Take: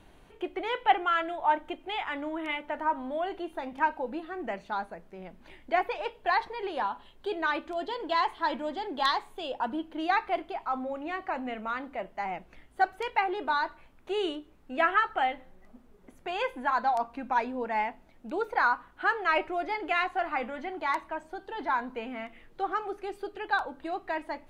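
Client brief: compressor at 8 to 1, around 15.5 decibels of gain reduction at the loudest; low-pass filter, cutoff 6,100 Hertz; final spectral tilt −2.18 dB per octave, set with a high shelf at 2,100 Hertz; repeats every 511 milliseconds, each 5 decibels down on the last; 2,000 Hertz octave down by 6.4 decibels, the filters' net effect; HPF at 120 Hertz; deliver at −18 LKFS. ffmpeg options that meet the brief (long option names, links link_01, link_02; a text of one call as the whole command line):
ffmpeg -i in.wav -af "highpass=120,lowpass=6100,equalizer=frequency=2000:width_type=o:gain=-6.5,highshelf=frequency=2100:gain=-4,acompressor=threshold=-35dB:ratio=8,aecho=1:1:511|1022|1533|2044|2555|3066|3577:0.562|0.315|0.176|0.0988|0.0553|0.031|0.0173,volume=21dB" out.wav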